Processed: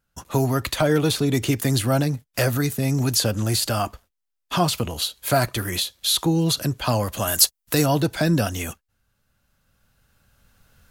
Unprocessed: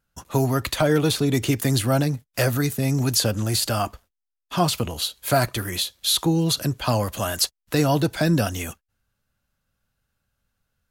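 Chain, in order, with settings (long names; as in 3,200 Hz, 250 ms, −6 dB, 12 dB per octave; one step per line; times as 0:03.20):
camcorder AGC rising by 8 dB per second
0:07.27–0:07.86: high-shelf EQ 6,600 Hz +11.5 dB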